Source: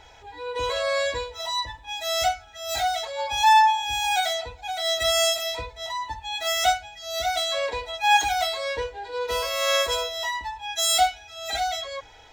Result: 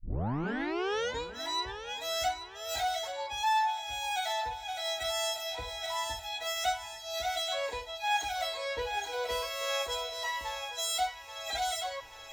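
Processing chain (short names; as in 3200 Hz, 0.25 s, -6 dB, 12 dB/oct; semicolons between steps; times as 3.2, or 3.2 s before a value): tape start at the beginning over 1.23 s; thinning echo 0.831 s, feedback 54%, high-pass 470 Hz, level -10.5 dB; vocal rider within 3 dB 0.5 s; gain -9 dB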